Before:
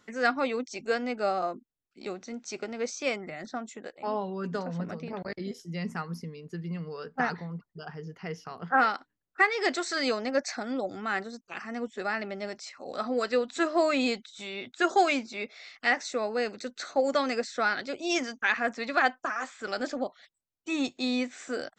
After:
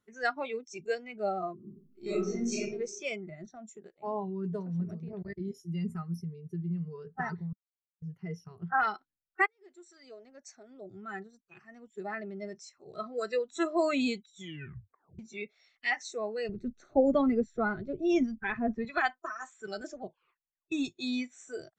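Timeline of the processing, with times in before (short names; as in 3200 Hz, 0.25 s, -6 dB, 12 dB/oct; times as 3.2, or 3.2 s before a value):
1.55–2.6 reverb throw, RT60 0.99 s, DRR -9.5 dB
7.53–8.02 mute
9.46–13.11 fade in equal-power
14.37 tape stop 0.82 s
16.49–18.85 tilt -4 dB/oct
20.02 tape stop 0.70 s
whole clip: notch 4900 Hz, Q 9.7; spectral noise reduction 16 dB; low shelf 190 Hz +10.5 dB; gain -4 dB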